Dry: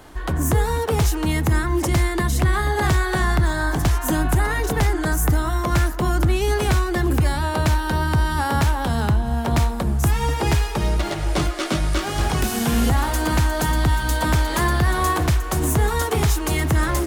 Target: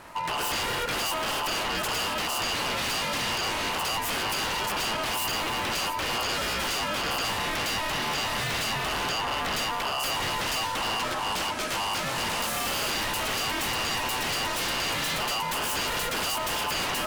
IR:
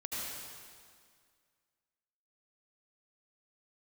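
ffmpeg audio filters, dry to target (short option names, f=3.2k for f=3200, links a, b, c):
-filter_complex "[0:a]aeval=exprs='val(0)*sin(2*PI*950*n/s)':c=same,aeval=exprs='0.0596*(abs(mod(val(0)/0.0596+3,4)-2)-1)':c=same,asplit=2[a][b];[1:a]atrim=start_sample=2205[c];[b][c]afir=irnorm=-1:irlink=0,volume=-14dB[d];[a][d]amix=inputs=2:normalize=0"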